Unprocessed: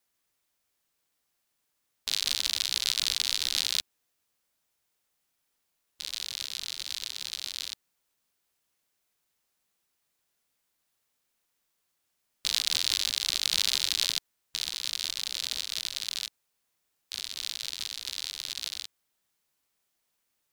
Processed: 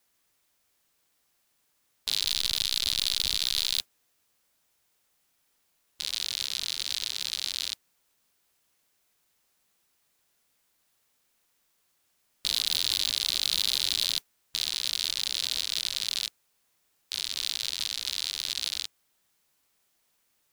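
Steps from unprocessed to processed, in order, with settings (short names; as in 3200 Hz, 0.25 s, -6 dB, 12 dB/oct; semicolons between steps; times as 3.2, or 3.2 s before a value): 2.25–3.78 level-crossing sampler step -40.5 dBFS; modulation noise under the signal 29 dB; soft clip -17.5 dBFS, distortion -8 dB; gain +6 dB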